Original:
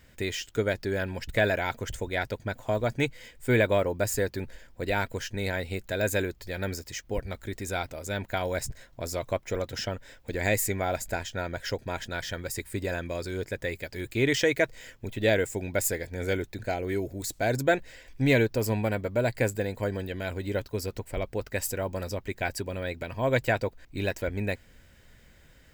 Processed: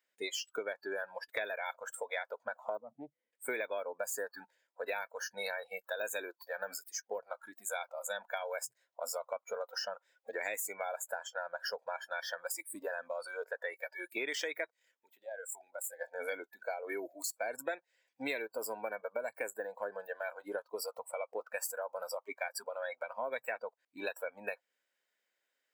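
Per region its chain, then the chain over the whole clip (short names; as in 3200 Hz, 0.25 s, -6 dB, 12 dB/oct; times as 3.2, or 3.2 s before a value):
2.77–3.33 G.711 law mismatch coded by mu + band-pass 170 Hz, Q 1.8 + Doppler distortion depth 0.23 ms
14.7–15.99 AM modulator 34 Hz, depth 20% + compressor 20:1, threshold -35 dBFS
whole clip: Bessel high-pass 580 Hz, order 4; spectral noise reduction 25 dB; compressor 6:1, threshold -38 dBFS; gain +3 dB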